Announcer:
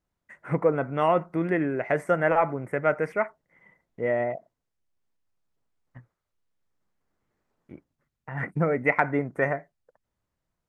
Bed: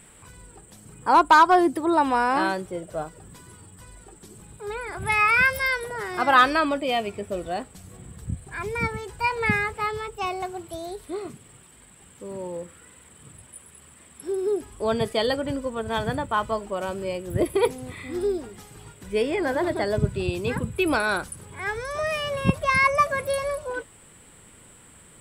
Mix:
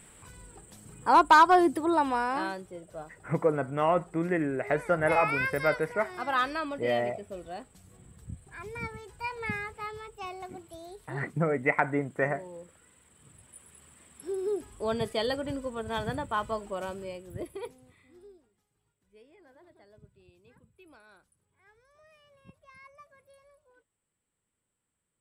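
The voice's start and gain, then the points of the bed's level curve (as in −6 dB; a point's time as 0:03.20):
2.80 s, −3.0 dB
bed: 0:01.76 −3 dB
0:02.68 −11 dB
0:13.08 −11 dB
0:13.72 −6 dB
0:16.83 −6 dB
0:18.62 −33.5 dB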